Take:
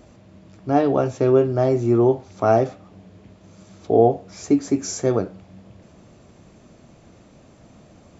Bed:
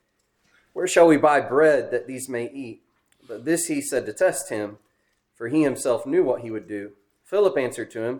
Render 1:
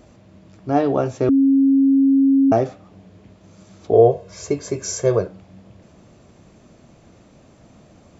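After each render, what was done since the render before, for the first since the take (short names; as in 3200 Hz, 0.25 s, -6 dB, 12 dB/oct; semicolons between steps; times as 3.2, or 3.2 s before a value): 1.29–2.52 bleep 272 Hz -11 dBFS; 3.93–5.27 comb 1.9 ms, depth 81%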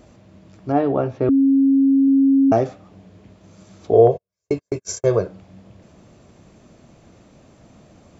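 0.72–2.08 air absorption 280 m; 4.07–5.08 gate -28 dBFS, range -47 dB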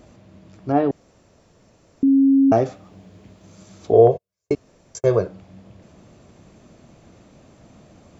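0.91–2.03 room tone; 2.66–3.92 high shelf 5100 Hz +6.5 dB; 4.55–4.95 room tone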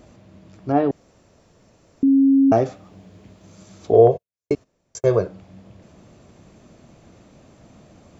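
3.95–5 gate -48 dBFS, range -15 dB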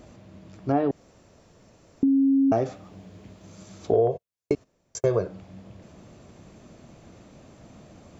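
compressor 4:1, threshold -19 dBFS, peak gain reduction 10.5 dB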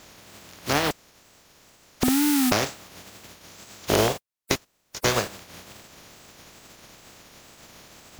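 spectral contrast lowered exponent 0.31; wow and flutter 140 cents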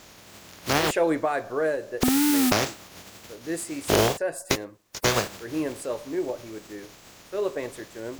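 add bed -8.5 dB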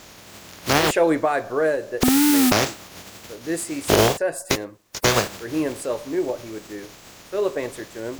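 gain +4.5 dB; limiter -2 dBFS, peak gain reduction 3 dB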